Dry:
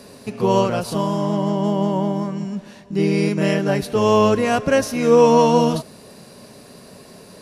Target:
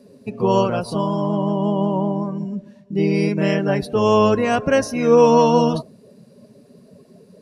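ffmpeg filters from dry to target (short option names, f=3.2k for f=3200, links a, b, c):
-af "afftdn=nr=17:nf=-35"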